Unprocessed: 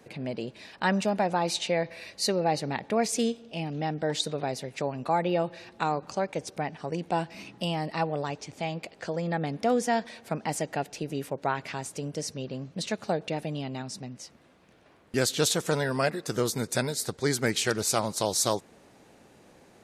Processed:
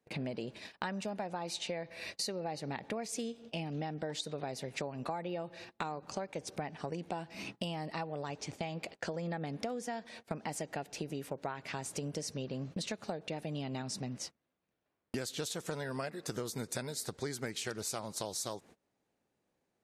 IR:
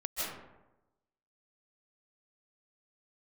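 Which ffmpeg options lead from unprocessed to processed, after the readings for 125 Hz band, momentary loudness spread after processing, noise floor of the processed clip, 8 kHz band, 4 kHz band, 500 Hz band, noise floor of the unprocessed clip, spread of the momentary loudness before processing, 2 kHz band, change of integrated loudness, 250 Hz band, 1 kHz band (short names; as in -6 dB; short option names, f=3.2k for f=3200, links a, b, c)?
-8.5 dB, 4 LU, -83 dBFS, -9.5 dB, -9.0 dB, -11.0 dB, -57 dBFS, 9 LU, -10.0 dB, -10.0 dB, -9.5 dB, -11.5 dB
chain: -af "agate=range=-29dB:threshold=-45dB:ratio=16:detection=peak,acompressor=threshold=-38dB:ratio=12,volume=3dB"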